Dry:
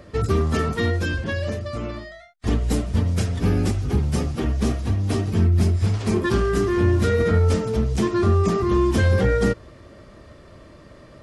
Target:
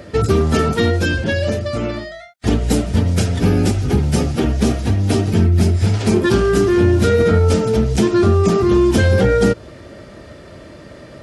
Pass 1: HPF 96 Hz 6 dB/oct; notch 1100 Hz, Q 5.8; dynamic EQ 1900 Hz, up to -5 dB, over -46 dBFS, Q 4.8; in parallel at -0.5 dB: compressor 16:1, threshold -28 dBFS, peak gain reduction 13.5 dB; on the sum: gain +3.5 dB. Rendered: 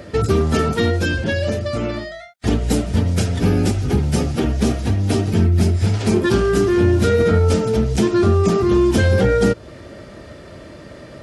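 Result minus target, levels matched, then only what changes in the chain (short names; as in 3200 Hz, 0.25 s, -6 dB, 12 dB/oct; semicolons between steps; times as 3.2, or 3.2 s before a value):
compressor: peak gain reduction +6 dB
change: compressor 16:1, threshold -21.5 dBFS, peak gain reduction 7.5 dB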